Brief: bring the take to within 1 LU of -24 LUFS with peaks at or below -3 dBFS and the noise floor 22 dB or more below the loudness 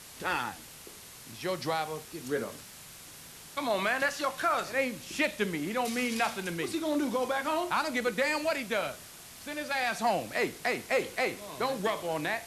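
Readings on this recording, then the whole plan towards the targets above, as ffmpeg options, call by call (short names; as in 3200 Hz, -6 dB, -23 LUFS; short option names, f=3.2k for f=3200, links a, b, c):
noise floor -49 dBFS; noise floor target -53 dBFS; loudness -31.0 LUFS; peak -15.5 dBFS; loudness target -24.0 LUFS
-> -af "afftdn=nr=6:nf=-49"
-af "volume=7dB"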